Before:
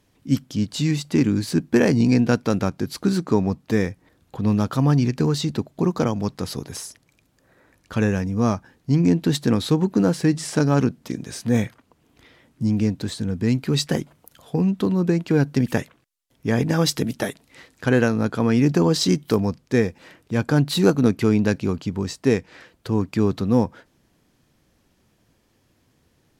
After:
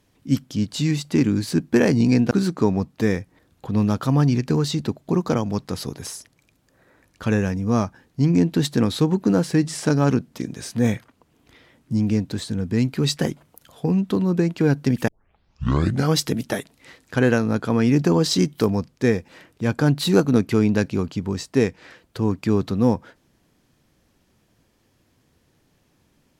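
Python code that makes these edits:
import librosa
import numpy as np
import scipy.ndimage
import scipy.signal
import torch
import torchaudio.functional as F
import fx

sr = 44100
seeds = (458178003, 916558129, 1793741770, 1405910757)

y = fx.edit(x, sr, fx.cut(start_s=2.31, length_s=0.7),
    fx.tape_start(start_s=15.78, length_s=1.08), tone=tone)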